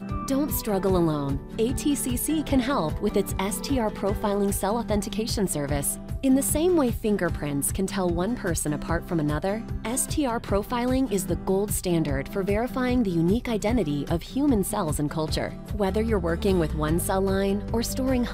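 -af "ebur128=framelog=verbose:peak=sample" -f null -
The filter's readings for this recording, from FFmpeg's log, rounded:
Integrated loudness:
  I:         -25.5 LUFS
  Threshold: -35.5 LUFS
Loudness range:
  LRA:         1.7 LU
  Threshold: -45.5 LUFS
  LRA low:   -26.5 LUFS
  LRA high:  -24.7 LUFS
Sample peak:
  Peak:       -9.8 dBFS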